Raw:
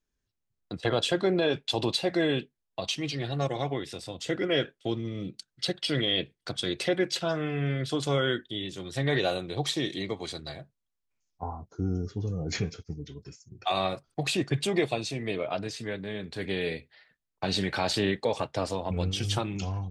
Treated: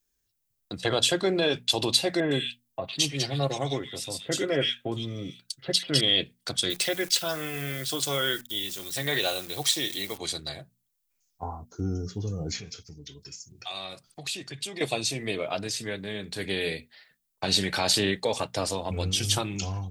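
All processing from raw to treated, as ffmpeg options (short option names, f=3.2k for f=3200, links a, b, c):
-filter_complex "[0:a]asettb=1/sr,asplit=3[a][b][c];[a]atrim=end=2.204[d];[b]atrim=start=2.2:end=6.01,asetpts=PTS-STARTPTS,afade=t=in:d=0.004:c=qsin,afade=t=out:st=3.806:d=0.004:c=qsin,aecho=1:1:7.5:0.31,atrim=end_sample=168021,acrossover=split=2000[e][f];[f]adelay=110[g];[e][g]amix=inputs=2:normalize=0,atrim=end_sample=168021[h];[c]atrim=start=6.006[i];[d][h]acrossfade=d=0.004:c1=hsin:c2=qsin[j];[j][i]acrossfade=d=0.004:c1=qsin:c2=hsin,asettb=1/sr,asplit=3[k][l][m];[k]atrim=end=6.704[n];[l]atrim=start=6.7:end=10.18,asetpts=PTS-STARTPTS,afade=t=in:d=0.004:c=qsin,afade=t=out:st=3.476:d=0.004:c=qsin,lowshelf=f=470:g=-7.5,acrusher=bits=9:dc=4:mix=0:aa=0.000001[o];[m]atrim=start=10.176[p];[n][o]acrossfade=d=0.004:c1=hsin:c2=qsin[q];[q][p]acrossfade=d=0.004:c1=qsin:c2=hsin,asettb=1/sr,asplit=3[r][s][t];[r]atrim=end=12.514[u];[s]atrim=start=12.51:end=14.81,asetpts=PTS-STARTPTS,afade=t=in:d=0.004:c=qsin,afade=t=out:st=2.296:d=0.004:c=qsin,equalizer=f=3.9k:t=o:w=2.2:g=7,acompressor=threshold=-48dB:ratio=2:attack=3.2:release=140:knee=1:detection=peak[v];[t]atrim=start=14.806[w];[u][v]acrossfade=d=0.004:c1=hsin:c2=qsin[x];[x][w]acrossfade=d=0.004:c1=qsin:c2=hsin,aemphasis=mode=production:type=75kf,bandreject=f=60:t=h:w=6,bandreject=f=120:t=h:w=6,bandreject=f=180:t=h:w=6,bandreject=f=240:t=h:w=6"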